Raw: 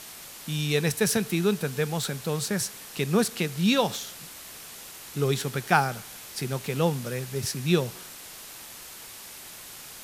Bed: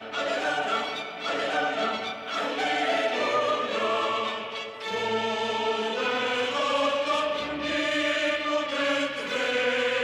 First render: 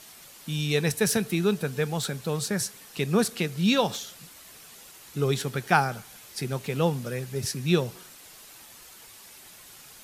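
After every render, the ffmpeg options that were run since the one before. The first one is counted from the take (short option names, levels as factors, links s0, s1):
-af "afftdn=nr=7:nf=-44"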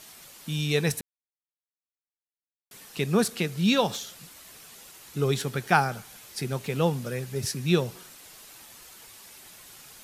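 -filter_complex "[0:a]asplit=3[s0][s1][s2];[s0]atrim=end=1.01,asetpts=PTS-STARTPTS,afade=t=out:st=1.006:d=0.004:c=hsin[s3];[s1]atrim=start=1.01:end=2.71,asetpts=PTS-STARTPTS,volume=0[s4];[s2]atrim=start=2.71,asetpts=PTS-STARTPTS,afade=t=in:d=0.004:c=hsin[s5];[s3][s4][s5]concat=n=3:v=0:a=1"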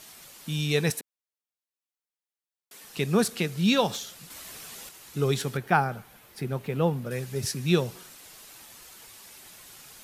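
-filter_complex "[0:a]asettb=1/sr,asplit=3[s0][s1][s2];[s0]atrim=end=0.904[s3];[s1]atrim=start=0.9:end=2.84,asetpts=PTS-STARTPTS,afade=t=in:d=0.004:c=qsin,afade=t=out:st=1.936:d=0.004:c=qsin,highpass=280[s4];[s2]atrim=start=2.836[s5];[s3][s4]acrossfade=d=0.004:c1=hsin:c2=qsin[s6];[s6][s5]acrossfade=d=0.004:c1=qsin:c2=hsin,asettb=1/sr,asplit=3[s7][s8][s9];[s7]atrim=end=4.304[s10];[s8]atrim=start=4.3:end=4.89,asetpts=PTS-STARTPTS,afade=t=in:d=0.004:c=qsin,afade=t=out:st=0.586:d=0.004:c=qsin,acontrast=38[s11];[s9]atrim=start=4.886[s12];[s10][s11]acrossfade=d=0.004:c1=hsin:c2=qsin[s13];[s13][s12]acrossfade=d=0.004:c1=qsin:c2=hsin,asettb=1/sr,asplit=3[s14][s15][s16];[s14]atrim=end=5.574[s17];[s15]atrim=start=5.57:end=7.11,asetpts=PTS-STARTPTS,afade=t=in:d=0.004:c=qsin,afade=t=out:st=1.536:d=0.004:c=qsin,equalizer=f=6700:w=0.51:g=-12.5[s18];[s16]atrim=start=7.106[s19];[s17][s18]acrossfade=d=0.004:c1=hsin:c2=qsin[s20];[s20][s19]acrossfade=d=0.004:c1=qsin:c2=hsin"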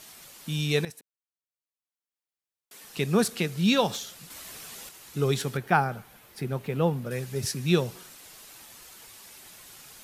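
-filter_complex "[0:a]asplit=2[s0][s1];[s0]atrim=end=0.85,asetpts=PTS-STARTPTS,afade=t=out:st=0.846:d=0.004:c=hsin:silence=0.141254[s2];[s1]atrim=start=0.85,asetpts=PTS-STARTPTS,afade=t=in:d=1.97:silence=0.141254[s3];[s2][s3]concat=n=2:v=0:a=1"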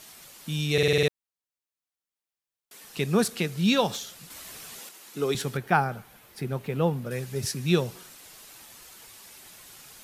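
-filter_complex "[0:a]asettb=1/sr,asplit=3[s0][s1][s2];[s0]atrim=end=4.794[s3];[s1]atrim=start=4.79:end=5.35,asetpts=PTS-STARTPTS,afade=t=in:d=0.004:c=qsin,afade=t=out:st=0.556:d=0.004:c=qsin,highpass=f=190:w=0.5412,highpass=f=190:w=1.3066[s4];[s2]atrim=start=5.346[s5];[s3][s4]acrossfade=d=0.004:c1=hsin:c2=qsin[s6];[s6][s5]acrossfade=d=0.004:c1=qsin:c2=hsin,asplit=8[s7][s8][s9][s10][s11][s12][s13][s14];[s7]atrim=end=0.782[s15];[s8]atrim=start=0.728:end=0.782[s16];[s9]atrim=start=0.728:end=0.782[s17];[s10]atrim=start=0.728:end=0.782[s18];[s11]atrim=start=0.728:end=0.782[s19];[s12]atrim=start=0.728:end=0.782[s20];[s13]atrim=start=0.728:end=0.782[s21];[s14]atrim=start=1.078[s22];[s15][s16]acrossfade=d=0.004:c1=hsin:c2=hsin[s23];[s23][s17]acrossfade=d=0.004:c1=hsin:c2=hsin[s24];[s24][s18]acrossfade=d=0.004:c1=hsin:c2=hsin[s25];[s25][s19]acrossfade=d=0.004:c1=hsin:c2=hsin[s26];[s26][s20]acrossfade=d=0.004:c1=hsin:c2=hsin[s27];[s27][s21]acrossfade=d=0.004:c1=hsin:c2=hsin[s28];[s28][s22]acrossfade=d=0.004:c1=hsin:c2=hsin"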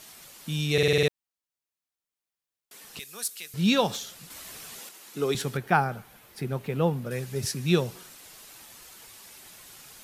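-filter_complex "[0:a]asettb=1/sr,asplit=3[s0][s1][s2];[s0]atrim=end=2.994[s3];[s1]atrim=start=2.99:end=3.54,asetpts=PTS-STARTPTS,afade=t=in:d=0.004:c=qsin,afade=t=out:st=0.546:d=0.004:c=qsin,aderivative[s4];[s2]atrim=start=3.536[s5];[s3][s4]acrossfade=d=0.004:c1=hsin:c2=qsin[s6];[s6][s5]acrossfade=d=0.004:c1=qsin:c2=hsin"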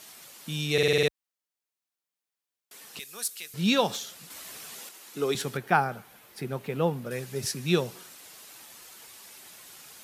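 -af "highpass=54,equalizer=f=75:t=o:w=2.1:g=-7.5"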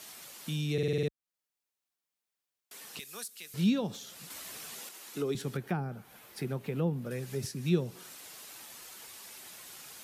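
-filter_complex "[0:a]acrossover=split=360[s0][s1];[s1]acompressor=threshold=0.01:ratio=6[s2];[s0][s2]amix=inputs=2:normalize=0"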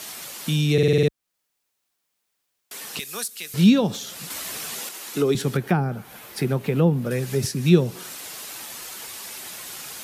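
-af "volume=3.98"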